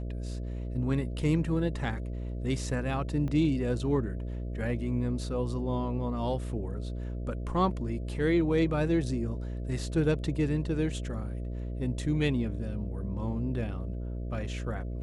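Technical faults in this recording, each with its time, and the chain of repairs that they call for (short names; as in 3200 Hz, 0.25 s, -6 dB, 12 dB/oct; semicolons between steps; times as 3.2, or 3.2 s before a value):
buzz 60 Hz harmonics 11 -35 dBFS
3.28 gap 3 ms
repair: de-hum 60 Hz, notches 11; interpolate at 3.28, 3 ms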